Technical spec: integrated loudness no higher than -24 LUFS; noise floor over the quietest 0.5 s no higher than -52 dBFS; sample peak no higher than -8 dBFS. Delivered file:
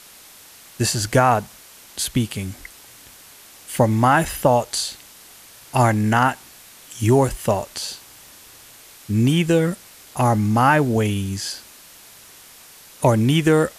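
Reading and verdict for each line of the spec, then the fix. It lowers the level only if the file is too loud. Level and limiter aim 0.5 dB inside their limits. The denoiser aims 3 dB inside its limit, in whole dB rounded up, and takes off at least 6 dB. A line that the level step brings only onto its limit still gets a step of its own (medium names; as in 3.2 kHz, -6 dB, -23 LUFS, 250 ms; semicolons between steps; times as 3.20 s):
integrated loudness -19.5 LUFS: fail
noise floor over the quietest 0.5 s -45 dBFS: fail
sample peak -4.0 dBFS: fail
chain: noise reduction 6 dB, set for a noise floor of -45 dBFS; trim -5 dB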